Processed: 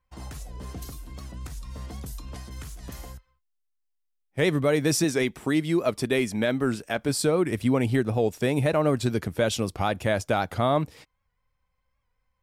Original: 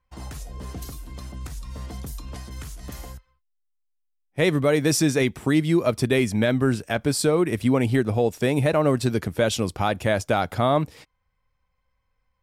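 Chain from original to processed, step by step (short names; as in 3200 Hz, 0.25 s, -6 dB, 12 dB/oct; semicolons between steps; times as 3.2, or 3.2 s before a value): 5.04–7.09 bell 94 Hz -8 dB 1.5 oct; record warp 78 rpm, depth 100 cents; gain -2.5 dB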